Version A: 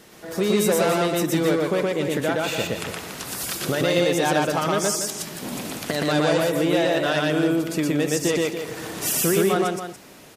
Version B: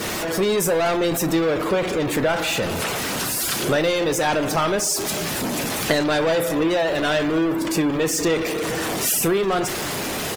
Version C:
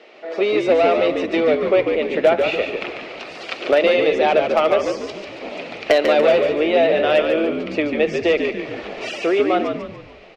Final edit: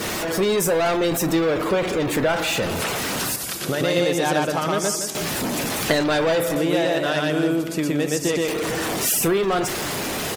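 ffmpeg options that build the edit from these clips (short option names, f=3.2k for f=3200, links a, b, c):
-filter_complex "[0:a]asplit=2[a][b];[1:a]asplit=3[c][d][e];[c]atrim=end=3.362[f];[a]atrim=start=3.358:end=5.152[g];[d]atrim=start=5.148:end=6.562[h];[b]atrim=start=6.558:end=8.482[i];[e]atrim=start=8.478[j];[f][g]acrossfade=d=0.004:c1=hsin:c2=hsin[k];[k][h]acrossfade=d=0.004:c1=hsin:c2=hsin[l];[l][i]acrossfade=d=0.004:c1=hsin:c2=hsin[m];[m][j]acrossfade=d=0.004:c1=hsin:c2=hsin"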